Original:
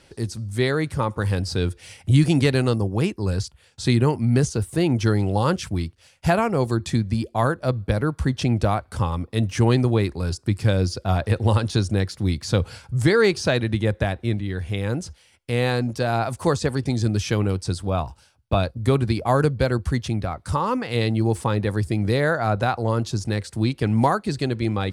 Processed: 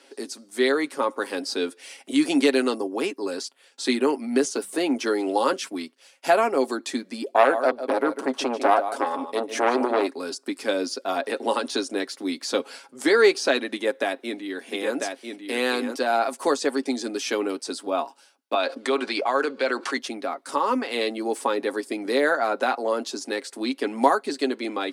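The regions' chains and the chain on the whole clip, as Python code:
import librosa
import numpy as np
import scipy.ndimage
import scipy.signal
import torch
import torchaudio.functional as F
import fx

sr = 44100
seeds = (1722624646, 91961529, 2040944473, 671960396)

y = fx.chain(x, sr, fx.hum_notches(base_hz=50, count=4),
    fx.band_squash(depth_pct=40), at=(4.55, 5.52))
y = fx.chain(y, sr, fx.peak_eq(hz=670.0, db=8.5, octaves=1.4),
    fx.echo_single(ms=149, db=-12.5),
    fx.transformer_sat(knee_hz=920.0), at=(7.24, 10.07))
y = fx.chain(y, sr, fx.high_shelf(hz=5400.0, db=4.0),
    fx.echo_single(ms=996, db=-5.0), at=(13.68, 15.95))
y = fx.chain(y, sr, fx.highpass(hz=910.0, slope=6),
    fx.air_absorb(metres=86.0),
    fx.env_flatten(amount_pct=70), at=(18.54, 19.97))
y = scipy.signal.sosfilt(scipy.signal.butter(8, 250.0, 'highpass', fs=sr, output='sos'), y)
y = y + 0.47 * np.pad(y, (int(7.3 * sr / 1000.0), 0))[:len(y)]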